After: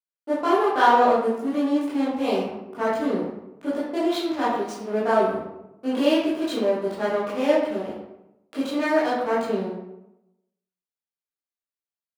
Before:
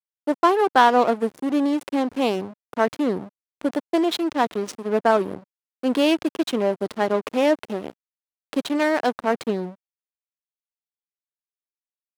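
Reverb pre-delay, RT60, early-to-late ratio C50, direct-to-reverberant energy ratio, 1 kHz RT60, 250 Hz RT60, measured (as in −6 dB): 14 ms, 0.90 s, 1.0 dB, −10.5 dB, 0.85 s, 1.0 s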